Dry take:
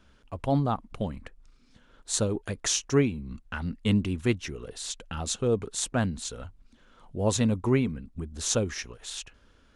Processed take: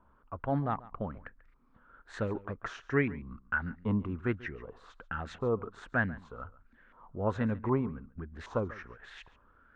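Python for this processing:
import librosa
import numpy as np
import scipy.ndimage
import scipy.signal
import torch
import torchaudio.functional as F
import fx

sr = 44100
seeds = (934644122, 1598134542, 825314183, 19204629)

y = fx.filter_lfo_lowpass(x, sr, shape='saw_up', hz=1.3, low_hz=960.0, high_hz=2000.0, q=5.3)
y = y + 10.0 ** (-19.5 / 20.0) * np.pad(y, (int(140 * sr / 1000.0), 0))[:len(y)]
y = y * 10.0 ** (-6.5 / 20.0)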